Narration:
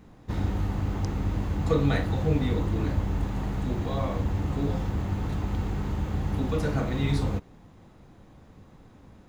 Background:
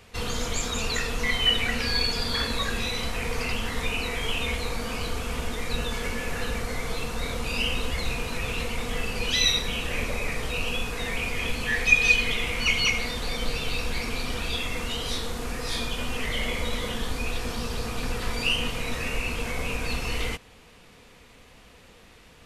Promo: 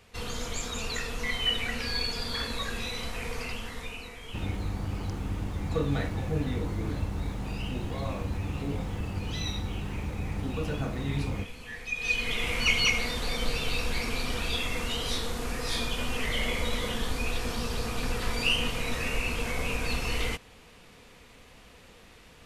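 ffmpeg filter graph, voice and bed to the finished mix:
ffmpeg -i stem1.wav -i stem2.wav -filter_complex "[0:a]adelay=4050,volume=-5dB[link_01];[1:a]volume=8.5dB,afade=type=out:start_time=3.29:duration=0.87:silence=0.334965,afade=type=in:start_time=11.94:duration=0.58:silence=0.199526[link_02];[link_01][link_02]amix=inputs=2:normalize=0" out.wav

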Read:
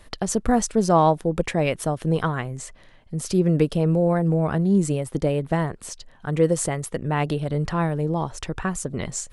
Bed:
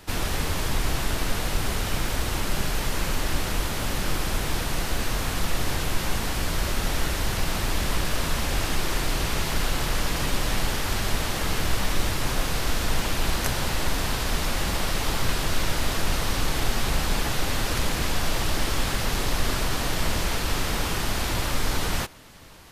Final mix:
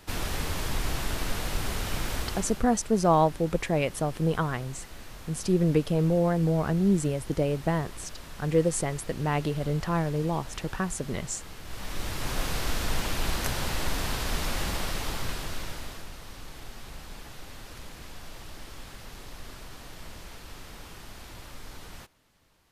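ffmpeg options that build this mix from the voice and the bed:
ffmpeg -i stem1.wav -i stem2.wav -filter_complex "[0:a]adelay=2150,volume=-4dB[link_01];[1:a]volume=9.5dB,afade=type=out:start_time=2.17:duration=0.47:silence=0.211349,afade=type=in:start_time=11.64:duration=0.8:silence=0.199526,afade=type=out:start_time=14.61:duration=1.5:silence=0.188365[link_02];[link_01][link_02]amix=inputs=2:normalize=0" out.wav

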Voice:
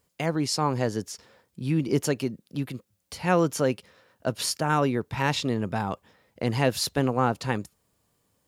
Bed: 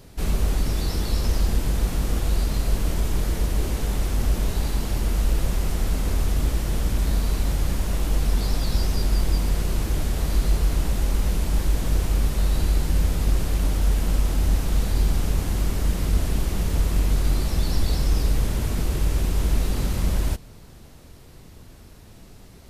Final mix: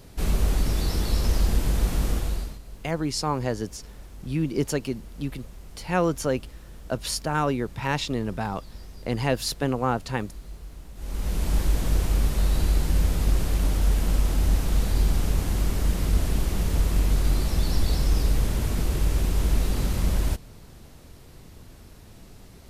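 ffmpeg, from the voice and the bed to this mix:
ffmpeg -i stem1.wav -i stem2.wav -filter_complex "[0:a]adelay=2650,volume=-1dB[link_01];[1:a]volume=18.5dB,afade=type=out:start_time=2.06:duration=0.53:silence=0.105925,afade=type=in:start_time=10.95:duration=0.55:silence=0.112202[link_02];[link_01][link_02]amix=inputs=2:normalize=0" out.wav

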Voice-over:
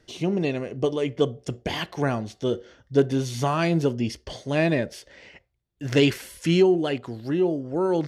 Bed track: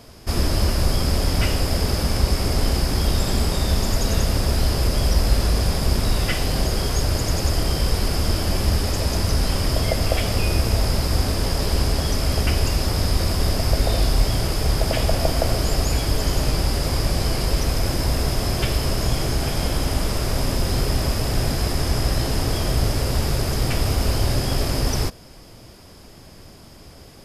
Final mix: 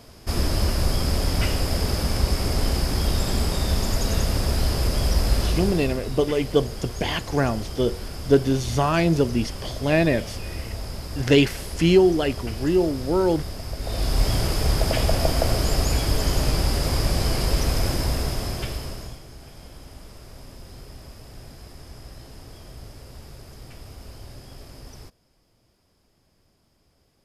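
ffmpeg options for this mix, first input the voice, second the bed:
ffmpeg -i stem1.wav -i stem2.wav -filter_complex "[0:a]adelay=5350,volume=2.5dB[link_01];[1:a]volume=9dB,afade=type=out:start_time=5.41:duration=0.59:silence=0.316228,afade=type=in:start_time=13.79:duration=0.51:silence=0.266073,afade=type=out:start_time=17.81:duration=1.4:silence=0.1[link_02];[link_01][link_02]amix=inputs=2:normalize=0" out.wav

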